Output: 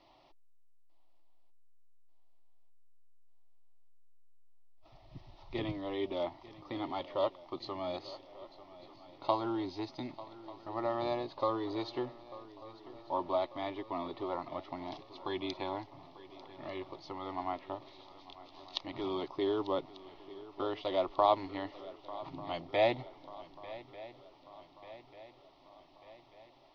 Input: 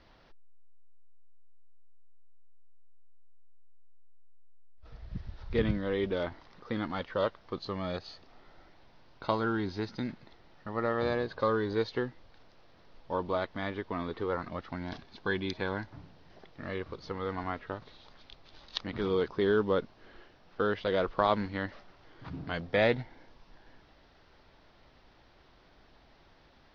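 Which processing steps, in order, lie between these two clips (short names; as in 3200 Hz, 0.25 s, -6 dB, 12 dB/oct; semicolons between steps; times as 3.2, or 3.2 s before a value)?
tone controls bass -12 dB, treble -7 dB; fixed phaser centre 310 Hz, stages 8; swung echo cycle 1.192 s, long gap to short 3:1, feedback 53%, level -17.5 dB; gain +3 dB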